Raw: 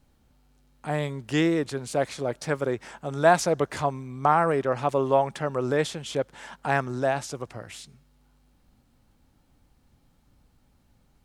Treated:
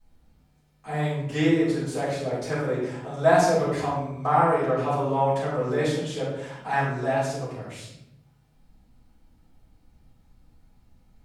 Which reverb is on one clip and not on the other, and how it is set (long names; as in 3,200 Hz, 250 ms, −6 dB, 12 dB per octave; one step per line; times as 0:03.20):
rectangular room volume 210 cubic metres, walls mixed, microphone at 6.1 metres
level −15 dB